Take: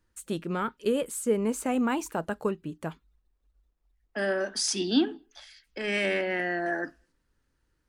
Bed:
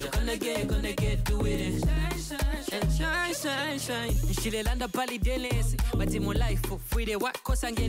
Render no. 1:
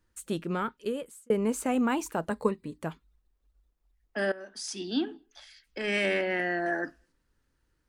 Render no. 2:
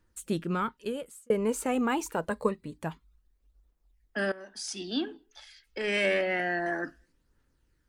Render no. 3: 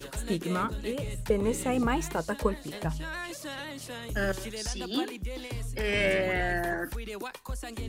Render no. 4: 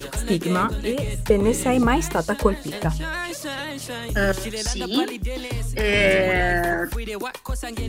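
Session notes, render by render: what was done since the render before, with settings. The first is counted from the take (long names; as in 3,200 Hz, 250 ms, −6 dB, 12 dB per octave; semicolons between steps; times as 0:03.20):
0:00.53–0:01.30: fade out; 0:02.30–0:02.79: EQ curve with evenly spaced ripples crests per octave 0.96, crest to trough 11 dB; 0:04.32–0:05.79: fade in, from −17 dB
phase shifter 0.27 Hz, delay 2.5 ms, feedback 34%
mix in bed −8.5 dB
level +8.5 dB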